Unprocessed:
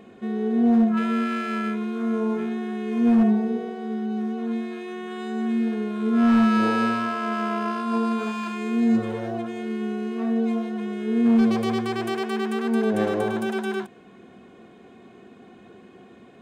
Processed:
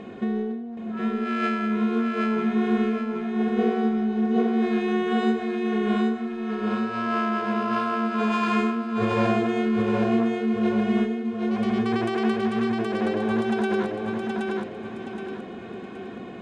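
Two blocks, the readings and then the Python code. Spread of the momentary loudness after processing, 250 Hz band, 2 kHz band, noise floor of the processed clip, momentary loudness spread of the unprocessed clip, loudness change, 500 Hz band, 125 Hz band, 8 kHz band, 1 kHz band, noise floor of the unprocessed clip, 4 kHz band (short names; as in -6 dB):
11 LU, -1.5 dB, +1.5 dB, -37 dBFS, 11 LU, -1.0 dB, +2.0 dB, +1.5 dB, n/a, +1.5 dB, -49 dBFS, +0.5 dB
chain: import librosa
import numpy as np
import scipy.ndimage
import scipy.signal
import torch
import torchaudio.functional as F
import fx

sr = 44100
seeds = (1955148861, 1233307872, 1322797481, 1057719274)

y = fx.over_compress(x, sr, threshold_db=-30.0, ratio=-1.0)
y = fx.air_absorb(y, sr, metres=82.0)
y = fx.echo_feedback(y, sr, ms=772, feedback_pct=39, wet_db=-3.0)
y = y * 10.0 ** (3.0 / 20.0)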